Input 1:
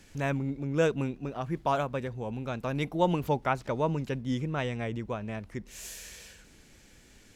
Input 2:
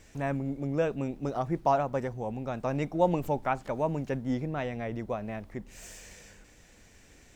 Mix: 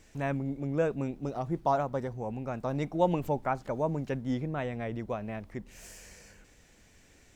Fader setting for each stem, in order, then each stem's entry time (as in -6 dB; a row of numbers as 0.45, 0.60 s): -12.0, -3.5 dB; 0.00, 0.00 s